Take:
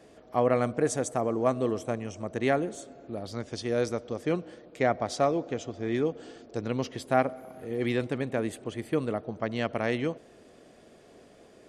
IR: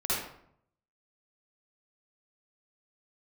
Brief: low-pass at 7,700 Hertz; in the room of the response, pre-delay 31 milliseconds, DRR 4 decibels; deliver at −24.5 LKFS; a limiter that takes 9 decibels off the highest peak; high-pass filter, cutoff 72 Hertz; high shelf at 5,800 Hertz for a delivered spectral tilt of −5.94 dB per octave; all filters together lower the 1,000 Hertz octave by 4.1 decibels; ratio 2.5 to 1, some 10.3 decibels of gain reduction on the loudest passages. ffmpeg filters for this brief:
-filter_complex "[0:a]highpass=72,lowpass=7700,equalizer=frequency=1000:width_type=o:gain=-6.5,highshelf=frequency=5800:gain=-4.5,acompressor=threshold=-37dB:ratio=2.5,alimiter=level_in=6dB:limit=-24dB:level=0:latency=1,volume=-6dB,asplit=2[link_01][link_02];[1:a]atrim=start_sample=2205,adelay=31[link_03];[link_02][link_03]afir=irnorm=-1:irlink=0,volume=-12.5dB[link_04];[link_01][link_04]amix=inputs=2:normalize=0,volume=16dB"

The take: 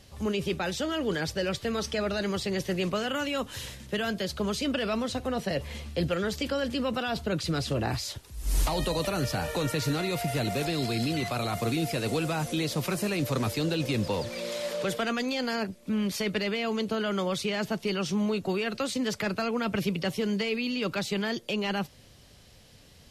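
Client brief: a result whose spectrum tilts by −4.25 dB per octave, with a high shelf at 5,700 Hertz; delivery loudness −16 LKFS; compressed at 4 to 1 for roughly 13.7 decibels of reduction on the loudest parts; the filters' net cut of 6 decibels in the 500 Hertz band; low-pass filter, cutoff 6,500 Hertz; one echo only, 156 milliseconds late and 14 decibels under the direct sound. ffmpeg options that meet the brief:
ffmpeg -i in.wav -af "lowpass=6500,equalizer=frequency=500:width_type=o:gain=-7.5,highshelf=frequency=5700:gain=-8.5,acompressor=threshold=-39dB:ratio=4,aecho=1:1:156:0.2,volume=24.5dB" out.wav

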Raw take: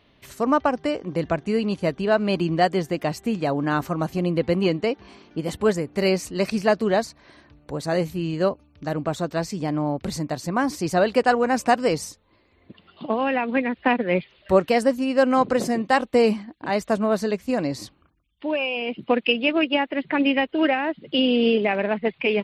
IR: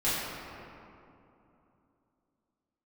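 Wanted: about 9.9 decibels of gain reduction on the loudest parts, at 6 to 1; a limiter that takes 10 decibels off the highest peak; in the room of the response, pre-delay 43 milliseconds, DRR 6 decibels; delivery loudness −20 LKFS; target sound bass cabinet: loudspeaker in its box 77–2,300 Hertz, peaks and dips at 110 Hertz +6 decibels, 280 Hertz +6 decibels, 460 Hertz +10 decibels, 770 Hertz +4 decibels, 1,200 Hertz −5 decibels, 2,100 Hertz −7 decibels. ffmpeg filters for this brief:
-filter_complex "[0:a]acompressor=threshold=-24dB:ratio=6,alimiter=limit=-22.5dB:level=0:latency=1,asplit=2[link_01][link_02];[1:a]atrim=start_sample=2205,adelay=43[link_03];[link_02][link_03]afir=irnorm=-1:irlink=0,volume=-17dB[link_04];[link_01][link_04]amix=inputs=2:normalize=0,highpass=frequency=77:width=0.5412,highpass=frequency=77:width=1.3066,equalizer=frequency=110:width_type=q:width=4:gain=6,equalizer=frequency=280:width_type=q:width=4:gain=6,equalizer=frequency=460:width_type=q:width=4:gain=10,equalizer=frequency=770:width_type=q:width=4:gain=4,equalizer=frequency=1200:width_type=q:width=4:gain=-5,equalizer=frequency=2100:width_type=q:width=4:gain=-7,lowpass=frequency=2300:width=0.5412,lowpass=frequency=2300:width=1.3066,volume=7dB"

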